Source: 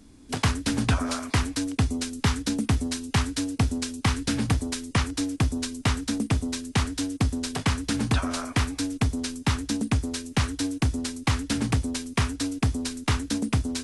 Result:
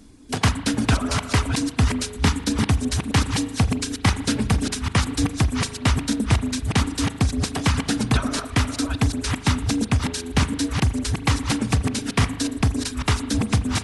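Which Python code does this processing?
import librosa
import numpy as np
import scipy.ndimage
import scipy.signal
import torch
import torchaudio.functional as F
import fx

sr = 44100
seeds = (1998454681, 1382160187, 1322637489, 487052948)

y = fx.reverse_delay(x, sr, ms=407, wet_db=-5.0)
y = fx.dereverb_blind(y, sr, rt60_s=0.76)
y = fx.rev_spring(y, sr, rt60_s=1.3, pass_ms=(38,), chirp_ms=25, drr_db=11.5)
y = y * 10.0 ** (4.0 / 20.0)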